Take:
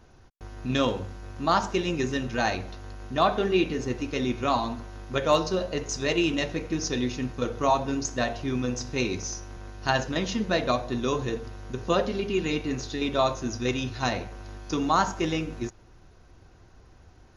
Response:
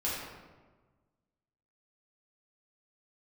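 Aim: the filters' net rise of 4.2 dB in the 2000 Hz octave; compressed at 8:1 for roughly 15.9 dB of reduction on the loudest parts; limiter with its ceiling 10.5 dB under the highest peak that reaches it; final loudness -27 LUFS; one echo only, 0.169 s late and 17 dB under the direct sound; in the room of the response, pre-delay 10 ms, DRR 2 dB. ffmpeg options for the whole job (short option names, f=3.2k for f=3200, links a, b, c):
-filter_complex "[0:a]equalizer=f=2k:t=o:g=5.5,acompressor=threshold=-33dB:ratio=8,alimiter=level_in=4.5dB:limit=-24dB:level=0:latency=1,volume=-4.5dB,aecho=1:1:169:0.141,asplit=2[a][b];[1:a]atrim=start_sample=2205,adelay=10[c];[b][c]afir=irnorm=-1:irlink=0,volume=-8.5dB[d];[a][d]amix=inputs=2:normalize=0,volume=10dB"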